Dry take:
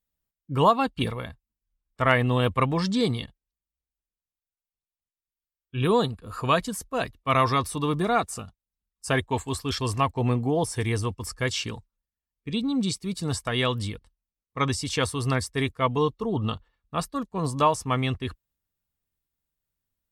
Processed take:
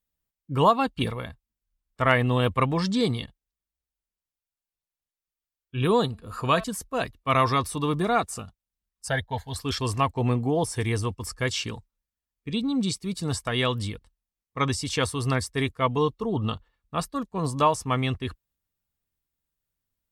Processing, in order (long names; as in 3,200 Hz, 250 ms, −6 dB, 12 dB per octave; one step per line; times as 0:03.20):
0:06.06–0:06.64: hum removal 220.6 Hz, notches 31
0:09.08–0:09.56: phaser with its sweep stopped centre 1,700 Hz, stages 8